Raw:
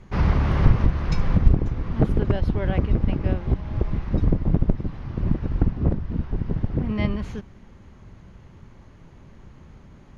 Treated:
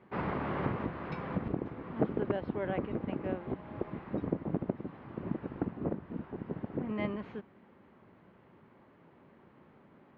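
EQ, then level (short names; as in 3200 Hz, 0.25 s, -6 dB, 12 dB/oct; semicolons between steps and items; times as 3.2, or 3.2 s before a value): HPF 280 Hz 12 dB/oct; air absorption 460 m; -3.0 dB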